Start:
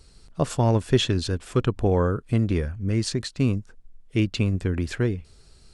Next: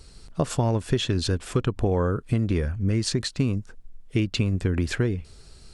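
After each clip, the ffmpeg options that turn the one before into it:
ffmpeg -i in.wav -af "acompressor=threshold=-24dB:ratio=6,volume=4.5dB" out.wav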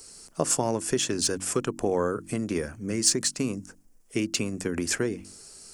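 ffmpeg -i in.wav -filter_complex "[0:a]acrossover=split=190 4700:gain=0.126 1 0.2[link_01][link_02][link_03];[link_01][link_02][link_03]amix=inputs=3:normalize=0,bandreject=frequency=47.21:width_type=h:width=4,bandreject=frequency=94.42:width_type=h:width=4,bandreject=frequency=141.63:width_type=h:width=4,bandreject=frequency=188.84:width_type=h:width=4,bandreject=frequency=236.05:width_type=h:width=4,bandreject=frequency=283.26:width_type=h:width=4,bandreject=frequency=330.47:width_type=h:width=4,aexciter=amount=6.6:drive=9.9:freq=5700" out.wav

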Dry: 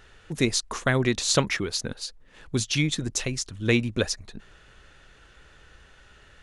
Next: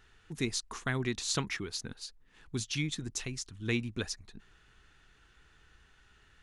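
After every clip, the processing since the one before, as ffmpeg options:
ffmpeg -i in.wav -af "equalizer=frequency=560:width=3.9:gain=-12.5,volume=-9dB" out.wav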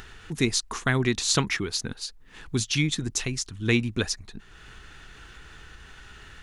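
ffmpeg -i in.wav -af "acompressor=mode=upward:threshold=-46dB:ratio=2.5,volume=9dB" out.wav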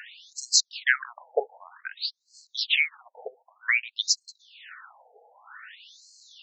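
ffmpeg -i in.wav -af "afftfilt=real='re*between(b*sr/1024,600*pow(5900/600,0.5+0.5*sin(2*PI*0.53*pts/sr))/1.41,600*pow(5900/600,0.5+0.5*sin(2*PI*0.53*pts/sr))*1.41)':imag='im*between(b*sr/1024,600*pow(5900/600,0.5+0.5*sin(2*PI*0.53*pts/sr))/1.41,600*pow(5900/600,0.5+0.5*sin(2*PI*0.53*pts/sr))*1.41)':win_size=1024:overlap=0.75,volume=7.5dB" out.wav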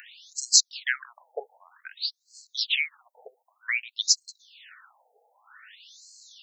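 ffmpeg -i in.wav -af "crystalizer=i=5:c=0,volume=-10dB" out.wav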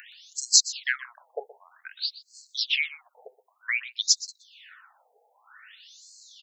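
ffmpeg -i in.wav -af "aecho=1:1:123:0.141" out.wav

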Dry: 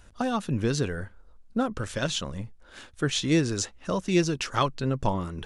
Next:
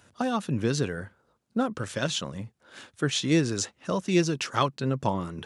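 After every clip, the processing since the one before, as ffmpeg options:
ffmpeg -i in.wav -af "highpass=frequency=100:width=0.5412,highpass=frequency=100:width=1.3066" out.wav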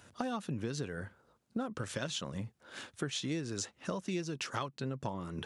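ffmpeg -i in.wav -af "acompressor=threshold=-34dB:ratio=6" out.wav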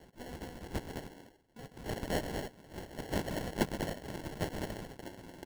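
ffmpeg -i in.wav -af "aderivative,aecho=1:1:128.3|209.9|282.8:0.355|0.501|0.355,acrusher=samples=36:mix=1:aa=0.000001,volume=10dB" out.wav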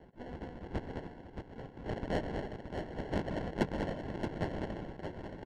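ffmpeg -i in.wav -filter_complex "[0:a]asplit=2[link_01][link_02];[link_02]asoftclip=type=tanh:threshold=-28dB,volume=-7dB[link_03];[link_01][link_03]amix=inputs=2:normalize=0,adynamicsmooth=sensitivity=1:basefreq=2200,aecho=1:1:624:0.447,volume=-2dB" out.wav

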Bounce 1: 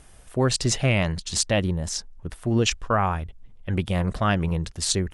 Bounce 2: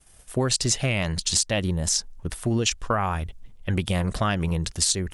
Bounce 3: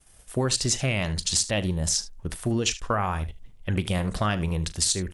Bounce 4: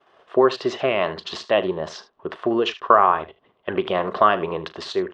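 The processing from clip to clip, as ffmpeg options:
ffmpeg -i in.wav -af "agate=range=-33dB:threshold=-41dB:ratio=3:detection=peak,highshelf=frequency=3600:gain=9.5,acompressor=threshold=-23dB:ratio=6,volume=3dB" out.wav
ffmpeg -i in.wav -af "aecho=1:1:38|75:0.15|0.15,volume=-1.5dB" out.wav
ffmpeg -i in.wav -af "asoftclip=type=tanh:threshold=-6dB,highpass=380,equalizer=frequency=390:width_type=q:width=4:gain=10,equalizer=frequency=650:width_type=q:width=4:gain=6,equalizer=frequency=1100:width_type=q:width=4:gain=10,equalizer=frequency=2300:width_type=q:width=4:gain=-7,lowpass=frequency=3100:width=0.5412,lowpass=frequency=3100:width=1.3066,volume=6.5dB" out.wav

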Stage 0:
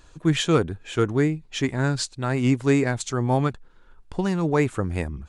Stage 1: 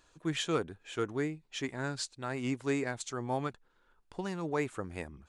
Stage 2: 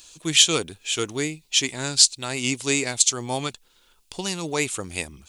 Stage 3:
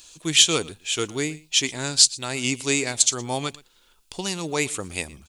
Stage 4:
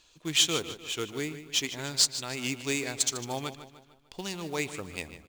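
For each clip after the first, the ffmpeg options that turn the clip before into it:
ffmpeg -i in.wav -af "lowshelf=frequency=180:gain=-12,volume=-9dB" out.wav
ffmpeg -i in.wav -af "aexciter=amount=7.2:drive=3.6:freq=2400,volume=5.5dB" out.wav
ffmpeg -i in.wav -af "aecho=1:1:117:0.0841" out.wav
ffmpeg -i in.wav -af "aecho=1:1:150|300|450|600|750:0.251|0.118|0.0555|0.0261|0.0123,adynamicsmooth=sensitivity=2.5:basefreq=4200,acrusher=bits=4:mode=log:mix=0:aa=0.000001,volume=-7dB" out.wav

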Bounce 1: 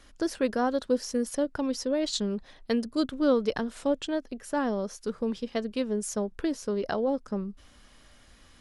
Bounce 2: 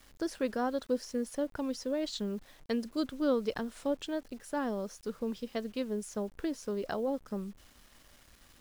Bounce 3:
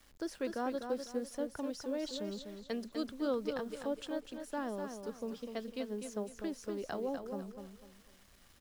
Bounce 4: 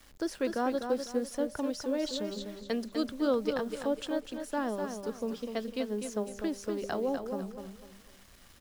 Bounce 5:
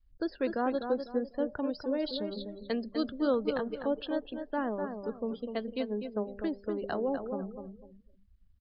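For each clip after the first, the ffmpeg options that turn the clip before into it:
ffmpeg -i in.wav -filter_complex "[0:a]acrossover=split=4200[link_01][link_02];[link_02]alimiter=level_in=7.5dB:limit=-24dB:level=0:latency=1:release=482,volume=-7.5dB[link_03];[link_01][link_03]amix=inputs=2:normalize=0,acrusher=bits=8:mix=0:aa=0.000001,volume=-5.5dB" out.wav
ffmpeg -i in.wav -filter_complex "[0:a]acrossover=split=260[link_01][link_02];[link_01]asoftclip=type=tanh:threshold=-39.5dB[link_03];[link_03][link_02]amix=inputs=2:normalize=0,aecho=1:1:249|498|747|996:0.447|0.143|0.0457|0.0146,volume=-4.5dB" out.wav
ffmpeg -i in.wav -af "bandreject=frequency=199.3:width_type=h:width=4,bandreject=frequency=398.6:width_type=h:width=4,bandreject=frequency=597.9:width_type=h:width=4,bandreject=frequency=797.2:width_type=h:width=4,volume=6dB" out.wav
ffmpeg -i in.wav -af "aresample=11025,aresample=44100,afftdn=noise_reduction=33:noise_floor=-47" out.wav

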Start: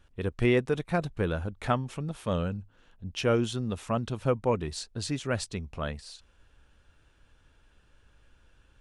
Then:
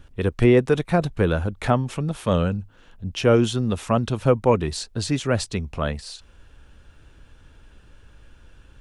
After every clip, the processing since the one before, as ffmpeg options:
ffmpeg -i in.wav -filter_complex "[0:a]acrossover=split=440|920[link_01][link_02][link_03];[link_01]acompressor=mode=upward:threshold=-49dB:ratio=2.5[link_04];[link_03]alimiter=level_in=3.5dB:limit=-24dB:level=0:latency=1:release=86,volume=-3.5dB[link_05];[link_04][link_02][link_05]amix=inputs=3:normalize=0,volume=8.5dB" out.wav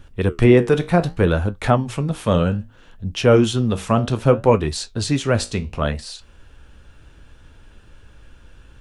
ffmpeg -i in.wav -af "flanger=delay=8.7:depth=9.9:regen=-66:speed=0.64:shape=sinusoidal,volume=7.5dB" out.wav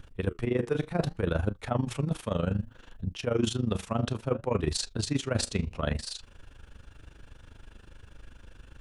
ffmpeg -i in.wav -af "areverse,acompressor=threshold=-21dB:ratio=12,areverse,tremolo=f=25:d=0.824" out.wav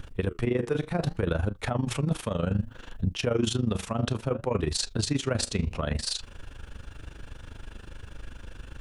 ffmpeg -i in.wav -af "alimiter=limit=-23.5dB:level=0:latency=1:release=166,volume=7.5dB" out.wav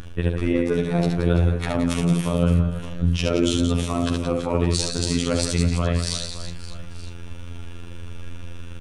ffmpeg -i in.wav -af "afftfilt=real='hypot(re,im)*cos(PI*b)':imag='0':win_size=2048:overlap=0.75,aecho=1:1:70|175|332.5|568.8|923.1:0.631|0.398|0.251|0.158|0.1,volume=6.5dB" out.wav

